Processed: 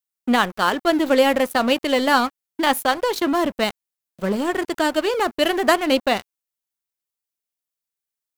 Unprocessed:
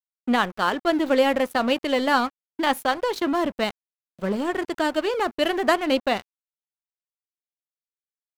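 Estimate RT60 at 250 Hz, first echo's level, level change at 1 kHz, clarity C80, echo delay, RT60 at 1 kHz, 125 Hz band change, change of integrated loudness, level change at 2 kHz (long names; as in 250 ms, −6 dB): no reverb audible, no echo audible, +3.0 dB, no reverb audible, no echo audible, no reverb audible, can't be measured, +3.5 dB, +3.5 dB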